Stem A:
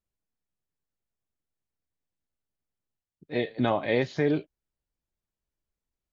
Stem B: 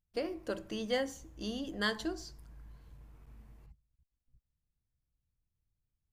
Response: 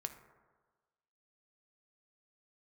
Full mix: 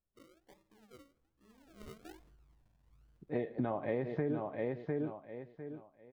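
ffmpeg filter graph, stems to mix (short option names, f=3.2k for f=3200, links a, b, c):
-filter_complex "[0:a]lowpass=1.3k,volume=-3.5dB,asplit=4[a][b][c][d];[b]volume=-7.5dB[e];[c]volume=-4.5dB[f];[1:a]highshelf=f=2.5k:g=-11.5,flanger=delay=8.8:depth=8.3:regen=-26:speed=1.5:shape=triangular,acrusher=samples=41:mix=1:aa=0.000001:lfo=1:lforange=24.6:lforate=1.2,volume=-11dB,afade=t=in:st=1.59:d=0.33:silence=0.251189,asplit=2[g][h];[h]volume=-11dB[i];[d]apad=whole_len=270043[j];[g][j]sidechaincompress=threshold=-52dB:ratio=8:attack=11:release=1330[k];[2:a]atrim=start_sample=2205[l];[e][i]amix=inputs=2:normalize=0[m];[m][l]afir=irnorm=-1:irlink=0[n];[f]aecho=0:1:702|1404|2106|2808:1|0.23|0.0529|0.0122[o];[a][k][n][o]amix=inputs=4:normalize=0,acompressor=threshold=-31dB:ratio=6"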